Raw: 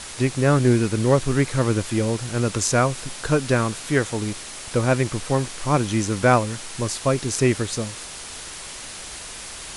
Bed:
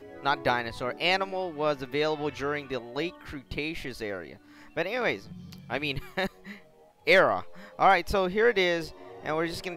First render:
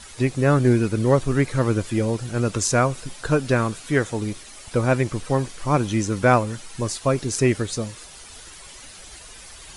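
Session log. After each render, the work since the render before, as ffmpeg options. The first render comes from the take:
-af "afftdn=nr=10:nf=-36"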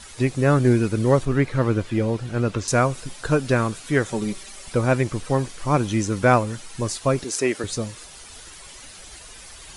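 -filter_complex "[0:a]asettb=1/sr,asplit=3[s0][s1][s2];[s0]atrim=end=1.254[s3];[s1]atrim=start=1.25:end=2.68,asetpts=PTS-STARTPTS,afade=t=in:d=0.004:c=qsin,afade=t=out:st=1.426:d=0.004:c=qsin,acrossover=split=4300[s4][s5];[s5]acompressor=threshold=0.00251:ratio=4:attack=1:release=60[s6];[s4][s6]amix=inputs=2:normalize=0[s7];[s2]atrim=start=2.676[s8];[s3][s7]acrossfade=d=0.004:c1=hsin:c2=qsin[s9];[s9][s8]acrossfade=d=0.004:c1=qsin:c2=hsin,asettb=1/sr,asplit=3[s10][s11][s12];[s10]atrim=end=4.084[s13];[s11]atrim=start=4.08:end=4.73,asetpts=PTS-STARTPTS,afade=t=in:d=0.004:c=qsin,afade=t=out:st=0.646:d=0.004:c=qsin,aecho=1:1:5.2:0.65,atrim=end_sample=28665[s14];[s12]atrim=start=4.726[s15];[s13][s14]acrossfade=d=0.004:c1=hsin:c2=qsin[s16];[s16][s15]acrossfade=d=0.004:c1=qsin:c2=hsin,asettb=1/sr,asplit=3[s17][s18][s19];[s17]atrim=end=7.244[s20];[s18]atrim=start=7.24:end=7.64,asetpts=PTS-STARTPTS,afade=t=in:d=0.004:c=qsin,afade=t=out:st=0.396:d=0.004:c=qsin,highpass=320[s21];[s19]atrim=start=7.636[s22];[s20][s21]acrossfade=d=0.004:c1=hsin:c2=qsin[s23];[s23][s22]acrossfade=d=0.004:c1=qsin:c2=hsin"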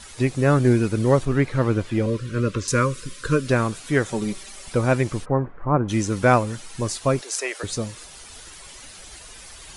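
-filter_complex "[0:a]asettb=1/sr,asplit=3[s0][s1][s2];[s0]atrim=end=2.064[s3];[s1]atrim=start=2.06:end=3.48,asetpts=PTS-STARTPTS,afade=t=in:d=0.004:c=qsin,afade=t=out:st=1.416:d=0.004:c=qsin,asuperstop=centerf=760:order=20:qfactor=2[s4];[s2]atrim=start=3.476[s5];[s3][s4]acrossfade=d=0.004:c1=hsin:c2=qsin[s6];[s6][s5]acrossfade=d=0.004:c1=qsin:c2=hsin,asplit=3[s7][s8][s9];[s7]afade=t=out:st=5.24:d=0.02[s10];[s8]lowpass=f=1500:w=0.5412,lowpass=f=1500:w=1.3066,afade=t=in:st=5.24:d=0.02,afade=t=out:st=5.88:d=0.02[s11];[s9]afade=t=in:st=5.88:d=0.02[s12];[s10][s11][s12]amix=inputs=3:normalize=0,asettb=1/sr,asplit=3[s13][s14][s15];[s13]atrim=end=7.214[s16];[s14]atrim=start=7.21:end=7.63,asetpts=PTS-STARTPTS,afade=t=in:d=0.004:c=qsin,afade=t=out:st=0.416:d=0.004:c=qsin,highpass=f=500:w=0.5412,highpass=f=500:w=1.3066[s17];[s15]atrim=start=7.626[s18];[s16][s17]acrossfade=d=0.004:c1=hsin:c2=qsin[s19];[s19][s18]acrossfade=d=0.004:c1=qsin:c2=hsin"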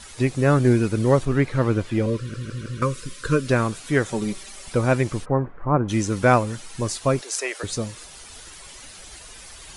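-filter_complex "[0:a]asplit=5[s0][s1][s2][s3][s4];[s0]atrim=end=2.342[s5];[s1]atrim=start=2.178:end=2.342[s6];[s2]atrim=start=2.178:end=2.342[s7];[s3]atrim=start=2.178:end=2.342[s8];[s4]atrim=start=2.818[s9];[s5][s6]acrossfade=d=0.004:c1=hsin:c2=hsin[s10];[s10][s7]acrossfade=d=0.004:c1=hsin:c2=hsin[s11];[s11][s8]acrossfade=d=0.004:c1=hsin:c2=hsin[s12];[s12][s9]acrossfade=d=0.004:c1=hsin:c2=hsin"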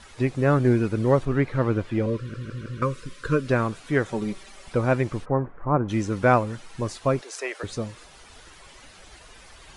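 -af "lowpass=f=2000:p=1,lowshelf=f=460:g=-3"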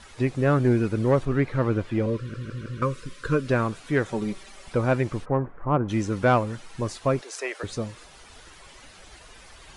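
-af "asoftclip=type=tanh:threshold=0.335"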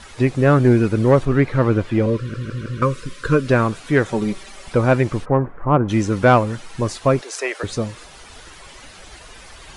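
-af "volume=2.24"

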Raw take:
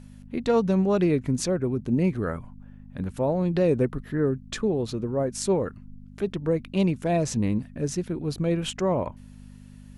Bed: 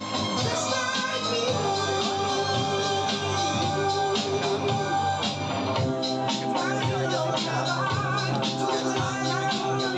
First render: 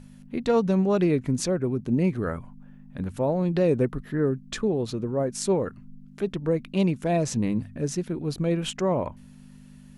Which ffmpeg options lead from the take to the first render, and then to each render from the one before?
-af "bandreject=f=50:t=h:w=4,bandreject=f=100:t=h:w=4"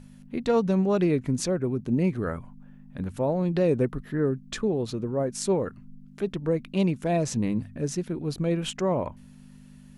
-af "volume=0.891"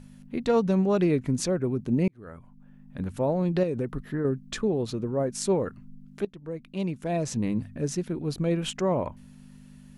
-filter_complex "[0:a]asettb=1/sr,asplit=3[s0][s1][s2];[s0]atrim=end=3.634[s3];[s1]atrim=start=3.63:end=4.25,asetpts=PTS-STARTPTS,afade=t=in:d=0.004:c=qsin,afade=t=out:st=0.616:d=0.004:c=qsin,acompressor=threshold=0.0631:ratio=6:attack=3.2:release=140:knee=1:detection=peak[s4];[s2]atrim=start=4.246[s5];[s3][s4]acrossfade=d=0.004:c1=hsin:c2=qsin[s6];[s6][s5]acrossfade=d=0.004:c1=qsin:c2=hsin,asplit=3[s7][s8][s9];[s7]atrim=end=2.08,asetpts=PTS-STARTPTS,afade=t=out:st=2.076:d=0.004:c=hsin[s10];[s8]atrim=start=2.08:end=6.25,asetpts=PTS-STARTPTS,afade=t=in:d=0.93,afade=t=out:st=4.166:d=0.004:c=hsin:silence=0.149624[s11];[s9]atrim=start=6.25,asetpts=PTS-STARTPTS,afade=t=in:d=1.4:silence=0.149624[s12];[s10][s11][s12]concat=n=3:v=0:a=1"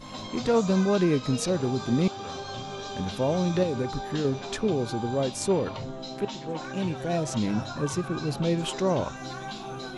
-filter_complex "[1:a]volume=0.282[s0];[0:a][s0]amix=inputs=2:normalize=0"

